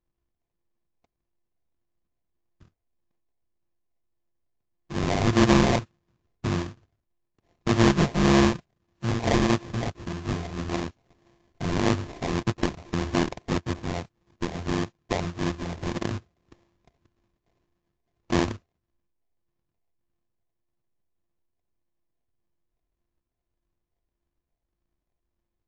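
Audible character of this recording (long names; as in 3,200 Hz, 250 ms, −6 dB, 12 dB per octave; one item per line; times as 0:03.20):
a buzz of ramps at a fixed pitch in blocks of 128 samples
phaser sweep stages 4, 1.7 Hz, lowest notch 380–1,200 Hz
aliases and images of a low sample rate 1,400 Hz, jitter 20%
AAC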